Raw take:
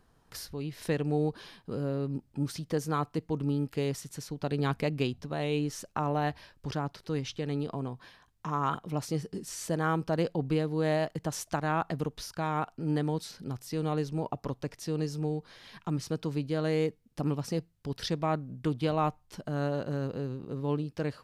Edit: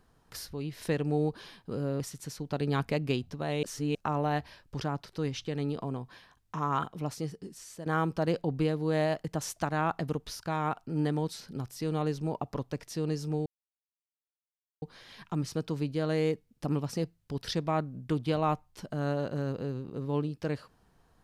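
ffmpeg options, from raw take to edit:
-filter_complex "[0:a]asplit=6[s0][s1][s2][s3][s4][s5];[s0]atrim=end=2.002[s6];[s1]atrim=start=3.908:end=5.542[s7];[s2]atrim=start=5.538:end=5.862,asetpts=PTS-STARTPTS,areverse[s8];[s3]atrim=start=5.858:end=9.77,asetpts=PTS-STARTPTS,afade=t=out:st=2.832:d=1.08:silence=0.237137[s9];[s4]atrim=start=9.77:end=15.37,asetpts=PTS-STARTPTS,afade=t=in:d=0.004:c=hsin:silence=0.237137,afade=t=out:st=5.596:d=0.004:c=hsin,apad=pad_dur=1.36[s10];[s5]atrim=start=15.37,asetpts=PTS-STARTPTS,afade=t=in:d=0.004:c=hsin[s11];[s6][s7]acrossfade=d=0.004:c1=hsin:c2=hsin[s12];[s12][s8]acrossfade=d=0.004:c1=hsin:c2=hsin[s13];[s9][s10][s11]concat=n=3:v=0:a=1[s14];[s13][s14]acrossfade=d=0.004:c1=hsin:c2=hsin"

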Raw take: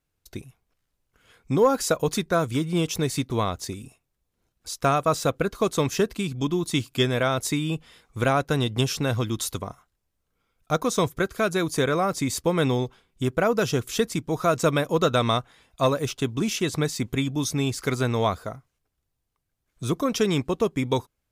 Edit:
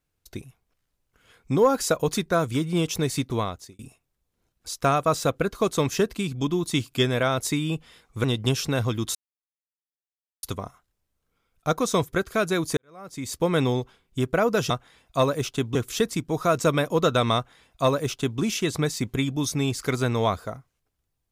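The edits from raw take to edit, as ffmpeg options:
-filter_complex "[0:a]asplit=7[s0][s1][s2][s3][s4][s5][s6];[s0]atrim=end=3.79,asetpts=PTS-STARTPTS,afade=t=out:st=3.32:d=0.47[s7];[s1]atrim=start=3.79:end=8.242,asetpts=PTS-STARTPTS,afade=t=in:d=0.004:c=hsin[s8];[s2]atrim=start=8.558:end=9.47,asetpts=PTS-STARTPTS,afade=t=out:st=0.908:d=0.004:c=hsin,apad=pad_dur=1.28[s9];[s3]atrim=start=9.47:end=11.81,asetpts=PTS-STARTPTS,afade=t=in:d=0.004:c=hsin,afade=t=out:st=2.336:d=0.004:c=hsin[s10];[s4]atrim=start=11.81:end=13.742,asetpts=PTS-STARTPTS,afade=t=in:d=0.68:c=qua[s11];[s5]atrim=start=15.338:end=16.392[s12];[s6]atrim=start=13.738[s13];[s7][s8]concat=n=2:v=0:a=1[s14];[s9][s10][s11]concat=n=3:v=0:a=1[s15];[s14][s15]acrossfade=d=0.004:c1=hsin:c2=hsin[s16];[s16][s12]acrossfade=d=0.004:c1=hsin:c2=hsin[s17];[s17][s13]acrossfade=d=0.004:c1=hsin:c2=hsin"

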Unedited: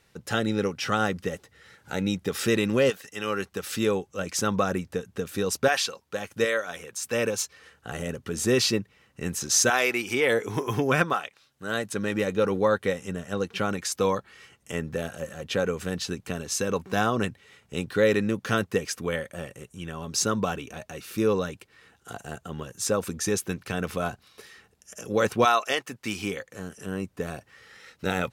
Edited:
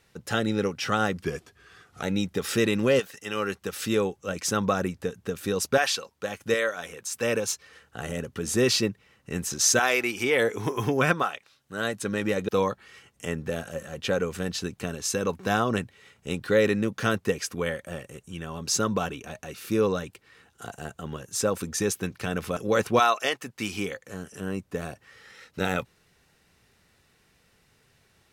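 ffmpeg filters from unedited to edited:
-filter_complex "[0:a]asplit=5[s0][s1][s2][s3][s4];[s0]atrim=end=1.234[s5];[s1]atrim=start=1.23:end=1.93,asetpts=PTS-STARTPTS,asetrate=38808,aresample=44100[s6];[s2]atrim=start=1.926:end=12.392[s7];[s3]atrim=start=13.948:end=24.032[s8];[s4]atrim=start=25.018[s9];[s5][s6]acrossfade=d=0.004:c1=hsin:c2=hsin[s10];[s10][s7]acrossfade=d=0.004:c1=hsin:c2=hsin[s11];[s11][s8]acrossfade=d=0.004:c1=hsin:c2=hsin[s12];[s12][s9]acrossfade=d=0.004:c1=hsin:c2=hsin"

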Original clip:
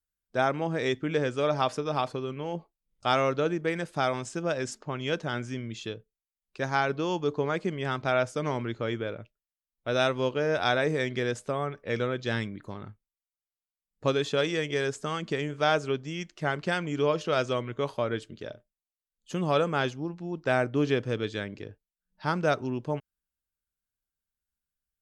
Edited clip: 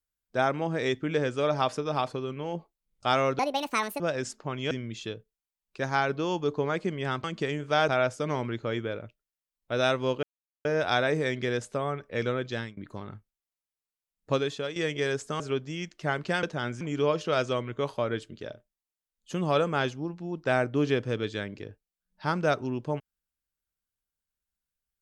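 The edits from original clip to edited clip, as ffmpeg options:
-filter_complex "[0:a]asplit=12[s0][s1][s2][s3][s4][s5][s6][s7][s8][s9][s10][s11];[s0]atrim=end=3.394[s12];[s1]atrim=start=3.39:end=4.42,asetpts=PTS-STARTPTS,asetrate=74529,aresample=44100[s13];[s2]atrim=start=4.416:end=5.132[s14];[s3]atrim=start=5.508:end=8.042[s15];[s4]atrim=start=15.138:end=15.782[s16];[s5]atrim=start=8.038:end=10.39,asetpts=PTS-STARTPTS,afade=t=out:st=2.348:d=0.004:c=hsin,apad=pad_dur=0.42[s17];[s6]atrim=start=10.39:end=12.51,asetpts=PTS-STARTPTS,afade=t=in:d=0.004:c=hsin,afade=t=out:st=1.81:d=0.31:silence=0.0668344[s18];[s7]atrim=start=12.51:end=14.5,asetpts=PTS-STARTPTS,afade=t=in:d=0.004:c=hsin:silence=0.0668344,afade=t=out:st=1.55:d=0.44:silence=0.251189[s19];[s8]atrim=start=14.5:end=15.142,asetpts=PTS-STARTPTS,afade=t=in:d=0.004:c=hsin:silence=0.251189[s20];[s9]atrim=start=15.778:end=16.812[s21];[s10]atrim=start=5.128:end=5.512[s22];[s11]atrim=start=16.808[s23];[s12][s13]acrossfade=d=0.004:c1=hsin:c2=hsin[s24];[s24][s14]acrossfade=d=0.004:c1=hsin:c2=hsin[s25];[s25][s15]acrossfade=d=0.004:c1=hsin:c2=hsin[s26];[s26][s16]acrossfade=d=0.004:c1=hsin:c2=hsin[s27];[s17][s18][s19][s20]concat=n=4:v=0:a=1[s28];[s27][s28]acrossfade=d=0.004:c1=hsin:c2=hsin[s29];[s29][s21]acrossfade=d=0.004:c1=hsin:c2=hsin[s30];[s30][s22]acrossfade=d=0.004:c1=hsin:c2=hsin[s31];[s31][s23]acrossfade=d=0.004:c1=hsin:c2=hsin"

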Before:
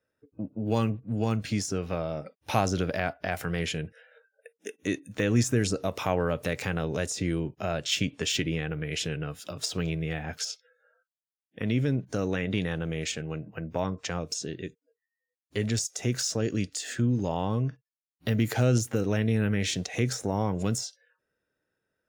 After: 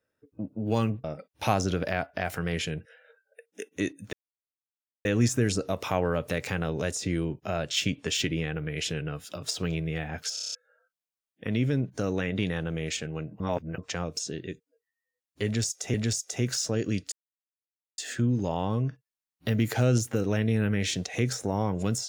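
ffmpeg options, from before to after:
-filter_complex "[0:a]asplit=14[s0][s1][s2][s3][s4][s5][s6][s7][s8][s9][s10][s11][s12][s13];[s0]atrim=end=1.042[s14];[s1]atrim=start=2.108:end=5.2,asetpts=PTS-STARTPTS,afade=t=out:st=3.088:d=0.004:c=hsin,apad=pad_dur=0.92[s15];[s2]atrim=start=5.2:end=10.522,asetpts=PTS-STARTPTS,afade=t=in:d=0.004:c=hsin[s16];[s3]atrim=start=10.488:end=10.522[s17];[s4]atrim=start=10.488:end=10.522[s18];[s5]atrim=start=10.488:end=10.522[s19];[s6]atrim=start=10.488:end=10.522[s20];[s7]atrim=start=10.488:end=10.522[s21];[s8]atrim=start=10.488:end=10.522[s22];[s9]atrim=start=10.698:end=13.552[s23];[s10]atrim=start=13.548:end=13.932,asetpts=PTS-STARTPTS,areverse[s24];[s11]atrim=start=13.928:end=16.092[s25];[s12]atrim=start=15.598:end=16.78,asetpts=PTS-STARTPTS,afade=t=out:st=1.178:d=0.004:c=hsin,apad=pad_dur=0.86[s26];[s13]atrim=start=16.78,asetpts=PTS-STARTPTS,afade=t=in:d=0.004:c=hsin[s27];[s15][s16]concat=n=2:v=0:a=1[s28];[s14][s28]acrossfade=d=0.004:c1=hsin:c2=hsin[s29];[s29][s17]acrossfade=d=0.004:c1=hsin:c2=hsin[s30];[s30][s18]acrossfade=d=0.004:c1=hsin:c2=hsin[s31];[s31][s19]acrossfade=d=0.004:c1=hsin:c2=hsin[s32];[s32][s20]acrossfade=d=0.004:c1=hsin:c2=hsin[s33];[s33][s21]acrossfade=d=0.004:c1=hsin:c2=hsin[s34];[s34][s22]acrossfade=d=0.004:c1=hsin:c2=hsin[s35];[s35][s23]acrossfade=d=0.004:c1=hsin:c2=hsin[s36];[s36][s24]acrossfade=d=0.004:c1=hsin:c2=hsin[s37];[s37][s25]acrossfade=d=0.004:c1=hsin:c2=hsin[s38];[s26][s27]concat=n=2:v=0:a=1[s39];[s38][s39]acrossfade=d=0.004:c1=hsin:c2=hsin"

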